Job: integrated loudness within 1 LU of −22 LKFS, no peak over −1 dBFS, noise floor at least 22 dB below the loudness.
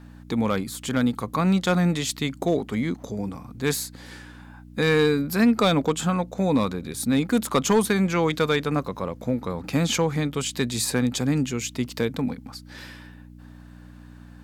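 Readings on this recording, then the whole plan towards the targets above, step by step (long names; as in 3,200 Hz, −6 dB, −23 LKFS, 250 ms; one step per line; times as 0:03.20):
share of clipped samples 0.3%; peaks flattened at −12.5 dBFS; mains hum 60 Hz; hum harmonics up to 300 Hz; level of the hum −42 dBFS; integrated loudness −24.0 LKFS; sample peak −12.5 dBFS; target loudness −22.0 LKFS
→ clipped peaks rebuilt −12.5 dBFS
hum removal 60 Hz, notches 5
level +2 dB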